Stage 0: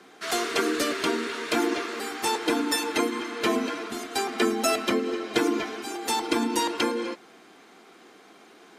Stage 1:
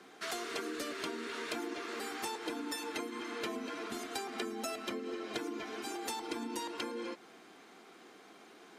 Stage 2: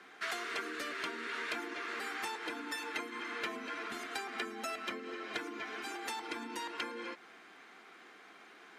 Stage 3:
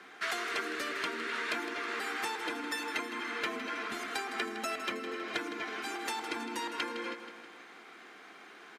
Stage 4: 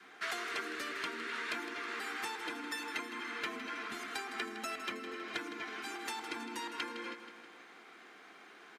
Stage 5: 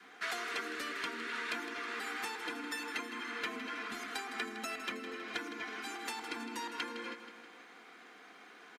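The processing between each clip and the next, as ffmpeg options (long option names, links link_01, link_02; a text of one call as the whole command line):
ffmpeg -i in.wav -af "acompressor=threshold=-32dB:ratio=6,volume=-4.5dB" out.wav
ffmpeg -i in.wav -af "equalizer=frequency=1800:width=0.69:gain=11.5,volume=-6dB" out.wav
ffmpeg -i in.wav -af "aecho=1:1:160|320|480|640|800|960:0.266|0.149|0.0834|0.0467|0.0262|0.0147,volume=3.5dB" out.wav
ffmpeg -i in.wav -af "adynamicequalizer=threshold=0.00178:dfrequency=560:dqfactor=1.8:tfrequency=560:tqfactor=1.8:attack=5:release=100:ratio=0.375:range=2.5:mode=cutabove:tftype=bell,volume=-3.5dB" out.wav
ffmpeg -i in.wav -af "aecho=1:1:4.1:0.31" out.wav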